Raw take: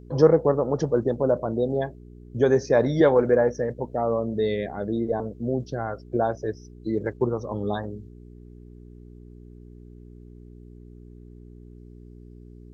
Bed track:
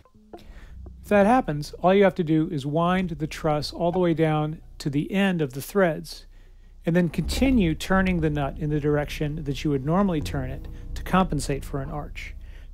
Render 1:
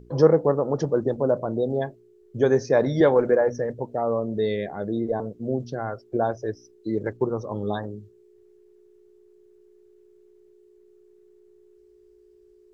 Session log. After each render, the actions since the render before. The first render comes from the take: de-hum 60 Hz, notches 5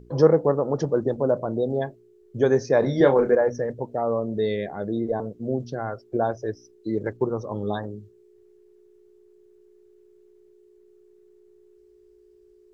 2.79–3.35 doubler 29 ms -7 dB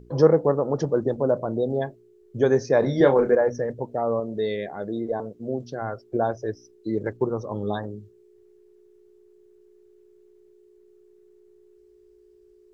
4.2–5.82 low shelf 220 Hz -7 dB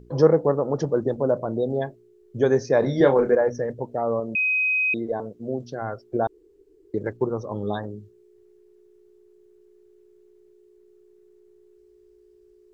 4.35–4.94 bleep 2520 Hz -19 dBFS; 6.27–6.94 room tone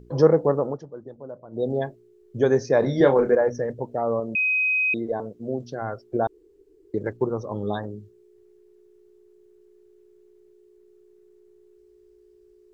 0.66–1.64 dip -16.5 dB, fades 0.13 s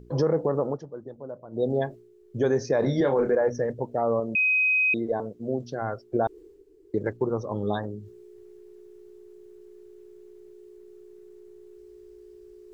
limiter -14.5 dBFS, peak gain reduction 10 dB; reverse; upward compressor, threshold -40 dBFS; reverse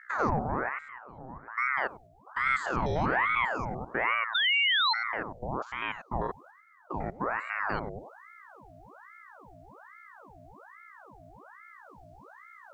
stepped spectrum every 0.1 s; ring modulator with a swept carrier 1000 Hz, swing 75%, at 1.2 Hz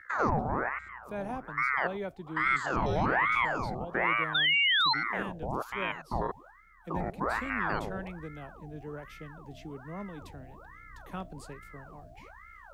add bed track -19 dB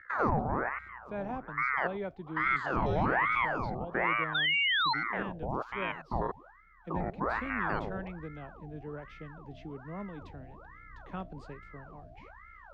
air absorption 200 m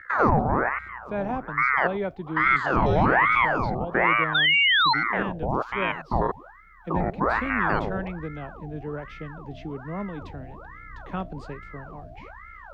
gain +8.5 dB

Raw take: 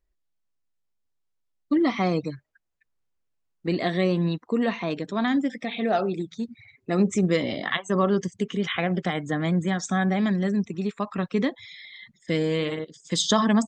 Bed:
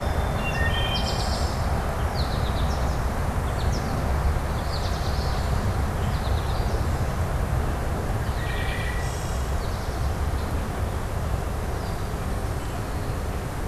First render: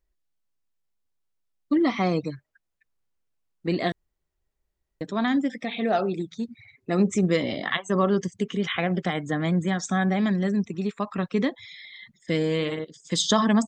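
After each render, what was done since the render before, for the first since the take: 3.92–5.01 room tone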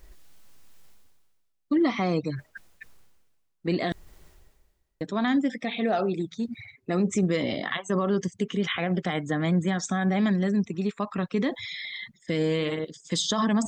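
limiter -16 dBFS, peak gain reduction 8.5 dB; reverse; upward compressor, threshold -27 dBFS; reverse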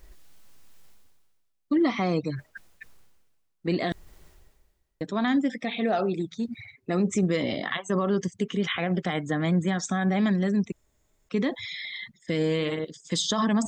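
10.72–11.29 room tone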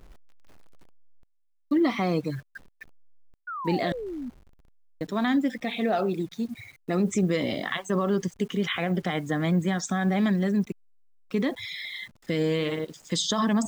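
level-crossing sampler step -50.5 dBFS; 3.47–4.3 painted sound fall 230–1500 Hz -34 dBFS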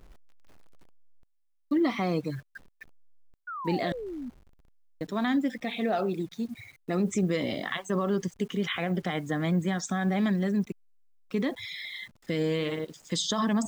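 gain -2.5 dB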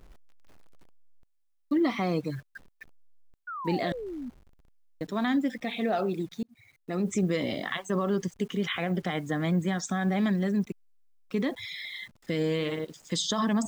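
6.43–7.16 fade in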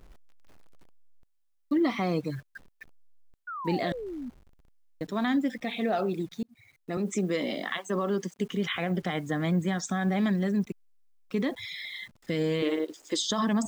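6.97–8.39 HPF 190 Hz 24 dB/oct; 12.62–13.29 resonant low shelf 230 Hz -10.5 dB, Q 3

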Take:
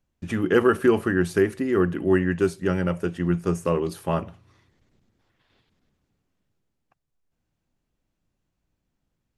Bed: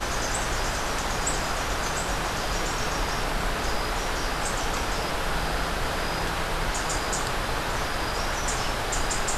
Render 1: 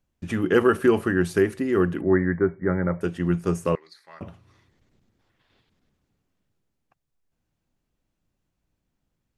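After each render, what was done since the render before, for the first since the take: 2.01–3.01 brick-wall FIR low-pass 2300 Hz; 3.75–4.21 double band-pass 2900 Hz, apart 1.1 oct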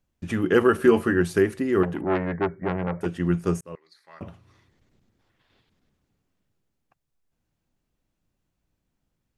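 0.77–1.21 doubler 13 ms -6.5 dB; 1.83–3.06 core saturation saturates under 1100 Hz; 3.61–4.26 fade in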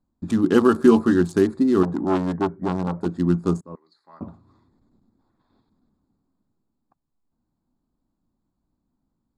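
Wiener smoothing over 15 samples; graphic EQ 125/250/500/1000/2000/4000/8000 Hz -3/+10/-5/+7/-10/+7/+10 dB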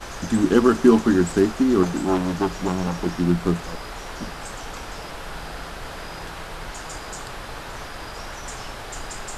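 add bed -7 dB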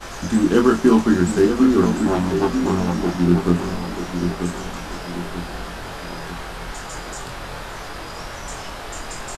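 doubler 23 ms -3 dB; darkening echo 0.938 s, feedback 44%, level -7 dB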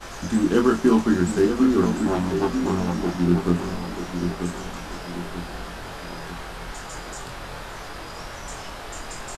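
gain -3.5 dB

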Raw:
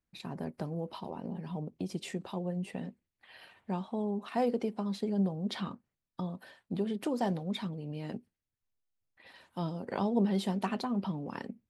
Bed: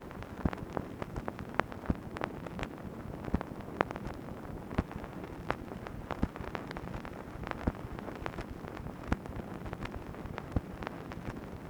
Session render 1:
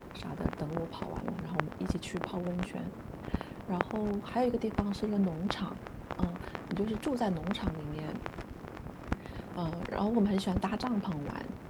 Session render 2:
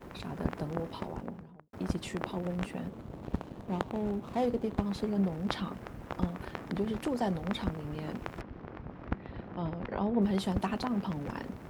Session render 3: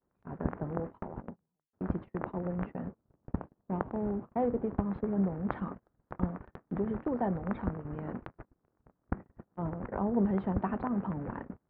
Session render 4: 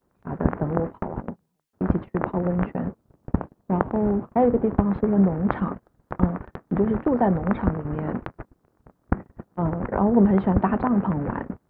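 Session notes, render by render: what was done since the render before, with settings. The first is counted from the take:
add bed -1.5 dB
0.96–1.73 studio fade out; 2.89–4.82 median filter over 25 samples; 8.41–10.22 air absorption 260 m
LPF 1700 Hz 24 dB/oct; gate -38 dBFS, range -33 dB
gain +11 dB; limiter -3 dBFS, peak gain reduction 1 dB

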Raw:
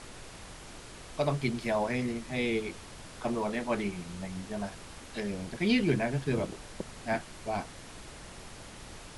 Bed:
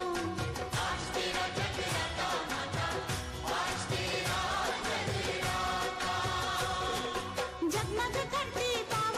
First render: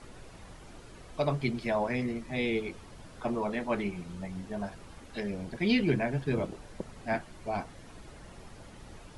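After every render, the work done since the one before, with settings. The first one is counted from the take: denoiser 9 dB, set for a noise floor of -48 dBFS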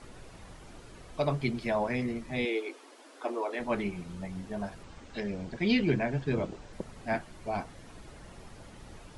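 2.45–3.6 brick-wall FIR high-pass 250 Hz; 4.83–6.73 steep low-pass 8200 Hz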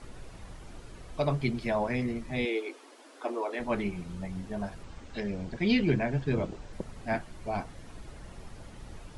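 low shelf 100 Hz +6.5 dB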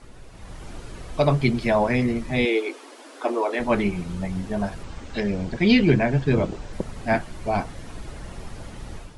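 AGC gain up to 9 dB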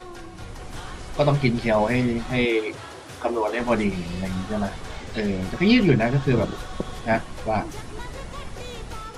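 add bed -6.5 dB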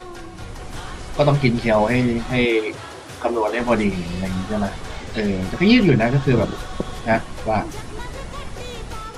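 gain +3.5 dB; limiter -3 dBFS, peak gain reduction 2 dB

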